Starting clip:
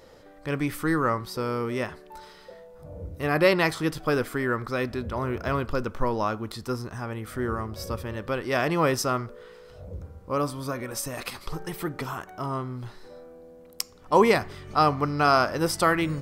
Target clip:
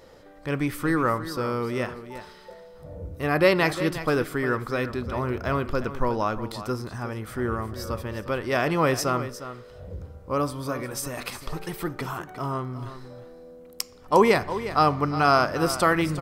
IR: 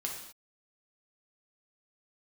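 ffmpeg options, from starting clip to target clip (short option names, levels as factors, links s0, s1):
-filter_complex "[0:a]aecho=1:1:356:0.237,asplit=2[s0][s1];[1:a]atrim=start_sample=2205,lowpass=4100[s2];[s1][s2]afir=irnorm=-1:irlink=0,volume=0.133[s3];[s0][s3]amix=inputs=2:normalize=0"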